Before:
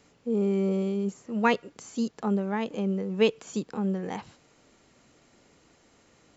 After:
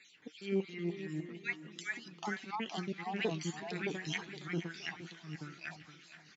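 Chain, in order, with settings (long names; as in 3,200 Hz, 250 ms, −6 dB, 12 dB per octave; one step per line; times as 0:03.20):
time-frequency cells dropped at random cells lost 33%
flat-topped bell 790 Hz −14.5 dB
in parallel at +2.5 dB: brickwall limiter −23.5 dBFS, peak gain reduction 7.5 dB
0:00.60–0:02.28: on the sum: downward compressor 5 to 1, threshold −33 dBFS, peak gain reduction 13.5 dB
auto-filter band-pass sine 3 Hz 800–4,700 Hz
delay with pitch and tempo change per echo 221 ms, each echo −2 semitones, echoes 2
flanger 1.9 Hz, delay 5.1 ms, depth 1.7 ms, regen +56%
on a send: repeating echo 467 ms, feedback 37%, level −13 dB
on the sum: level +9.5 dB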